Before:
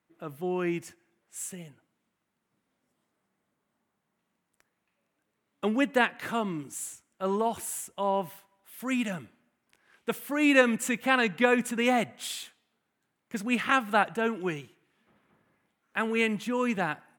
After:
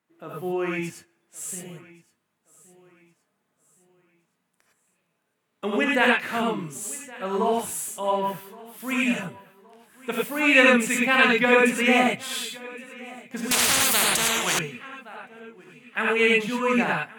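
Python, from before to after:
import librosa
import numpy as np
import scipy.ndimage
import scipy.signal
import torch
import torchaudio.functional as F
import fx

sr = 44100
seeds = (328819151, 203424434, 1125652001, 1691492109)

p1 = fx.low_shelf(x, sr, hz=98.0, db=-10.5)
p2 = fx.rev_gated(p1, sr, seeds[0], gate_ms=130, shape='rising', drr_db=-3.0)
p3 = fx.dynamic_eq(p2, sr, hz=2300.0, q=1.7, threshold_db=-39.0, ratio=4.0, max_db=6)
p4 = p3 + fx.echo_feedback(p3, sr, ms=1119, feedback_pct=39, wet_db=-21.0, dry=0)
y = fx.spectral_comp(p4, sr, ratio=10.0, at=(13.51, 14.59))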